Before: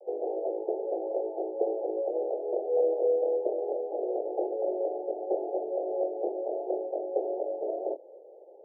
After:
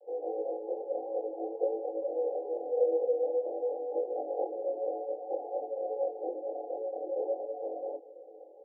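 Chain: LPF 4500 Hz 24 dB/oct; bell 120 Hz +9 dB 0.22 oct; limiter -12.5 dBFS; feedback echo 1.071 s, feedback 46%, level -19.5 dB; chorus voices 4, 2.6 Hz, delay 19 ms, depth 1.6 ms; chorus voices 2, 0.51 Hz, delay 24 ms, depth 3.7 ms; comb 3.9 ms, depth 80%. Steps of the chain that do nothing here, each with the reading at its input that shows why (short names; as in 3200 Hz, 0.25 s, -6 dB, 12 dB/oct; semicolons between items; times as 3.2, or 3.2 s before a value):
LPF 4500 Hz: input band ends at 850 Hz; bell 120 Hz: input band starts at 300 Hz; limiter -12.5 dBFS: input peak -14.0 dBFS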